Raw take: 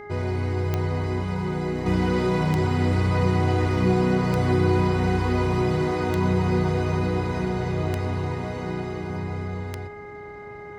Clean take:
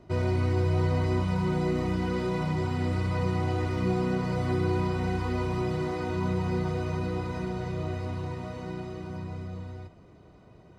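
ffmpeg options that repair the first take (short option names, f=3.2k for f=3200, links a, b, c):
-af "adeclick=t=4,bandreject=f=413.6:t=h:w=4,bandreject=f=827.2:t=h:w=4,bandreject=f=1.2408k:t=h:w=4,bandreject=f=1.6544k:t=h:w=4,bandreject=f=2.068k:t=h:w=4,bandreject=f=2.1k:w=30,asetnsamples=n=441:p=0,asendcmd='1.86 volume volume -6.5dB',volume=0dB"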